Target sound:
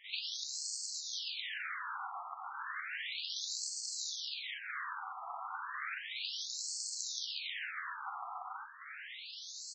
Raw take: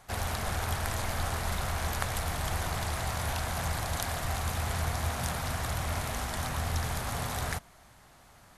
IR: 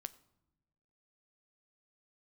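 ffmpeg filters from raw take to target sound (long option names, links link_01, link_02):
-filter_complex "[0:a]highpass=100,tiltshelf=frequency=970:gain=-10,alimiter=limit=-16.5dB:level=0:latency=1:release=278,acompressor=threshold=-43dB:ratio=16,flanger=delay=7.9:depth=7.8:regen=-46:speed=1.5:shape=sinusoidal,atempo=0.88,aecho=1:1:109:0.266,asplit=2[link_01][link_02];[1:a]atrim=start_sample=2205,adelay=43[link_03];[link_02][link_03]afir=irnorm=-1:irlink=0,volume=16dB[link_04];[link_01][link_04]amix=inputs=2:normalize=0,afftfilt=real='re*between(b*sr/1024,950*pow(6000/950,0.5+0.5*sin(2*PI*0.33*pts/sr))/1.41,950*pow(6000/950,0.5+0.5*sin(2*PI*0.33*pts/sr))*1.41)':imag='im*between(b*sr/1024,950*pow(6000/950,0.5+0.5*sin(2*PI*0.33*pts/sr))/1.41,950*pow(6000/950,0.5+0.5*sin(2*PI*0.33*pts/sr))*1.41)':win_size=1024:overlap=0.75,volume=4dB"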